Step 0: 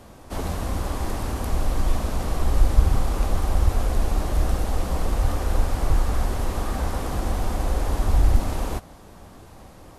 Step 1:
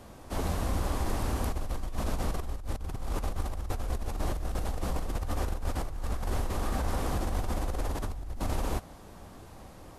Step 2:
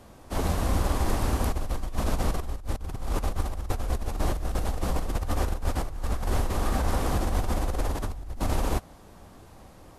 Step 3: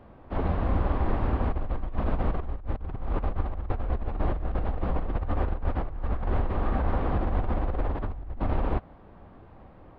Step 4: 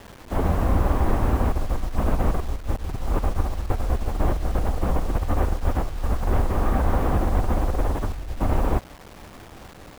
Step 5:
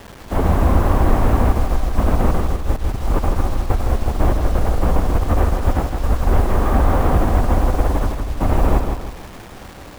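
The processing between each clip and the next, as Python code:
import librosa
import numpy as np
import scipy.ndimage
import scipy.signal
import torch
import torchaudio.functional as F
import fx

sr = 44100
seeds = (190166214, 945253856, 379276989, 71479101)

y1 = fx.over_compress(x, sr, threshold_db=-24.0, ratio=-1.0)
y1 = y1 * librosa.db_to_amplitude(-6.5)
y2 = fx.upward_expand(y1, sr, threshold_db=-40.0, expansion=1.5)
y2 = y2 * librosa.db_to_amplitude(6.0)
y3 = scipy.ndimage.gaussian_filter1d(y2, 3.4, mode='constant')
y4 = fx.quant_dither(y3, sr, seeds[0], bits=8, dither='none')
y4 = y4 * librosa.db_to_amplitude(5.0)
y5 = fx.echo_feedback(y4, sr, ms=160, feedback_pct=40, wet_db=-6)
y5 = y5 * librosa.db_to_amplitude(5.0)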